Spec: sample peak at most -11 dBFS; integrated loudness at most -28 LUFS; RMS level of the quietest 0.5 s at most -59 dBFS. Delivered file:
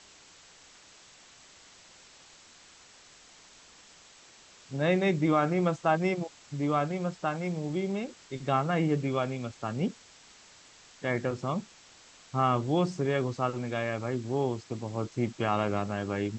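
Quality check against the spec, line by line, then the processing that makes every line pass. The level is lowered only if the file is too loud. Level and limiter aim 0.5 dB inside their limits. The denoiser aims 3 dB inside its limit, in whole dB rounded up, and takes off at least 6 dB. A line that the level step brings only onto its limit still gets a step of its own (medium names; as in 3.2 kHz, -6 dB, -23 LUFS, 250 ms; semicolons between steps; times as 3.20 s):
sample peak -12.0 dBFS: pass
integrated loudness -30.0 LUFS: pass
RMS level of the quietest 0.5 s -55 dBFS: fail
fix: noise reduction 7 dB, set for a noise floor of -55 dBFS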